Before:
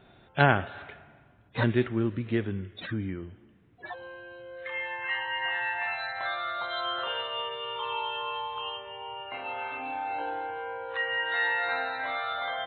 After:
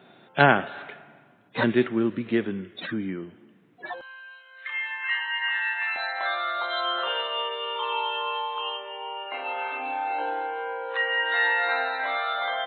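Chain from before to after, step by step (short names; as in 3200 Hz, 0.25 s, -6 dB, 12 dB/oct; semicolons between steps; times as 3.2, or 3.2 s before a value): HPF 160 Hz 24 dB/oct, from 4.01 s 1100 Hz, from 5.96 s 290 Hz; gain +4.5 dB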